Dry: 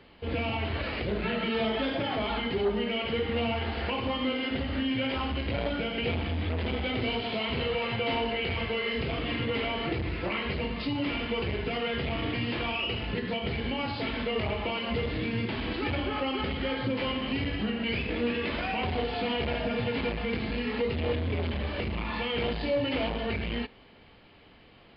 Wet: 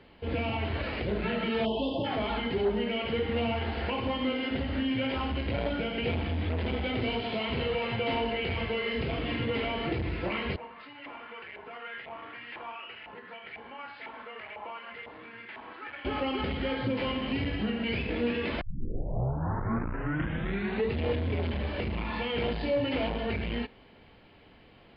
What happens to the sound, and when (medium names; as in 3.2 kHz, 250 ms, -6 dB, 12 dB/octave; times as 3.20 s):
1.65–2.05 s: spectral selection erased 1.1–2.6 kHz
10.56–16.05 s: LFO band-pass saw up 2 Hz 880–2000 Hz
18.61 s: tape start 2.39 s
whole clip: treble shelf 3.7 kHz -6.5 dB; band-stop 1.2 kHz, Q 17